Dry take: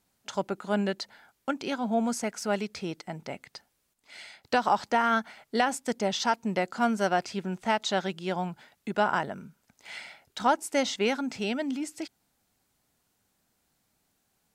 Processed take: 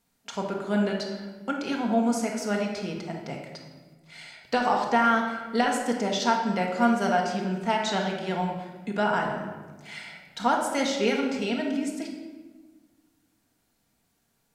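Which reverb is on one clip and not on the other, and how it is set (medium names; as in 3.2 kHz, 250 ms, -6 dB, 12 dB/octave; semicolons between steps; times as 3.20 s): simulated room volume 1100 m³, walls mixed, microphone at 1.7 m; trim -1.5 dB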